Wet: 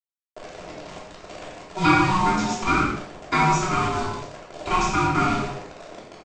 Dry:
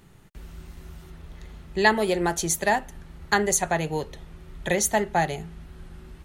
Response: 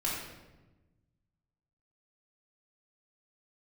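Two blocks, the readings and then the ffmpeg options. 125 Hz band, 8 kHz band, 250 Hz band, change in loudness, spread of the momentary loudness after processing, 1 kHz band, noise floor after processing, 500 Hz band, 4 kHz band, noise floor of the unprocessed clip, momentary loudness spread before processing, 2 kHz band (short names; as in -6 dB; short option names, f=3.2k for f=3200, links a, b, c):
+6.5 dB, -8.0 dB, +5.0 dB, +2.0 dB, 21 LU, +5.5 dB, under -85 dBFS, -4.0 dB, +1.5 dB, -50 dBFS, 15 LU, +1.0 dB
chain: -filter_complex "[0:a]lowpass=f=6.2k:w=0.5412,lowpass=f=6.2k:w=1.3066,highshelf=f=3.8k:g=-6.5,aresample=16000,acrusher=bits=5:mix=0:aa=0.000001,aresample=44100,aecho=1:1:89:0.251,aeval=exprs='val(0)*sin(2*PI*560*n/s)':c=same[a];[1:a]atrim=start_sample=2205,afade=t=out:st=0.28:d=0.01,atrim=end_sample=12789[b];[a][b]afir=irnorm=-1:irlink=0,acrossover=split=160[c][d];[c]asoftclip=type=tanh:threshold=-27.5dB[e];[e][d]amix=inputs=2:normalize=0"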